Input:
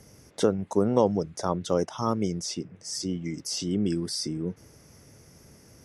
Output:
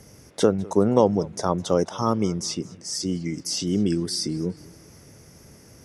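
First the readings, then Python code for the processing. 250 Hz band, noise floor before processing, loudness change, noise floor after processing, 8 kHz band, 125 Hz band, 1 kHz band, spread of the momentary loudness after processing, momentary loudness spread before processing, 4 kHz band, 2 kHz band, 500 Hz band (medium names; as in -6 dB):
+4.0 dB, -55 dBFS, +4.0 dB, -50 dBFS, +4.0 dB, +4.0 dB, +4.0 dB, 10 LU, 10 LU, +4.0 dB, +4.0 dB, +4.0 dB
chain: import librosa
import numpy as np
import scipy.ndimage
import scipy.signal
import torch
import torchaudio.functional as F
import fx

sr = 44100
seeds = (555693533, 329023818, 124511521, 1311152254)

y = fx.echo_warbled(x, sr, ms=207, feedback_pct=46, rate_hz=2.8, cents=144, wet_db=-22.5)
y = F.gain(torch.from_numpy(y), 4.0).numpy()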